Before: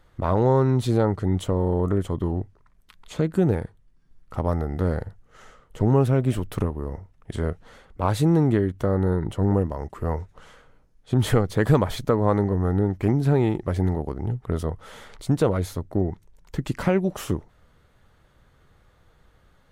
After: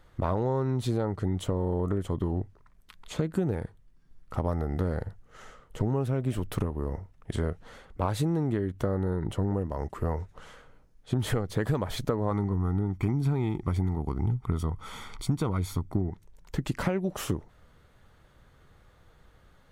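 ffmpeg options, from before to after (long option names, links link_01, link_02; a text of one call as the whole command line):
ffmpeg -i in.wav -filter_complex "[0:a]asettb=1/sr,asplit=3[link_01][link_02][link_03];[link_01]atrim=end=12.314[link_04];[link_02]atrim=start=12.31:end=16.09,asetpts=PTS-STARTPTS,afade=type=in:duration=0.004:curve=qsin,afade=type=out:start_time=3.776:duration=0.004:curve=qsin,aecho=1:1:0.9:0.65,atrim=end_sample=166698[link_05];[link_03]atrim=start=16.086[link_06];[link_04][link_05]acrossfade=duration=0.004:curve1=hsin:curve2=qsin[link_07];[link_07][link_06]acrossfade=duration=0.004:curve1=qsin:curve2=hsin,acompressor=threshold=-24dB:ratio=5" out.wav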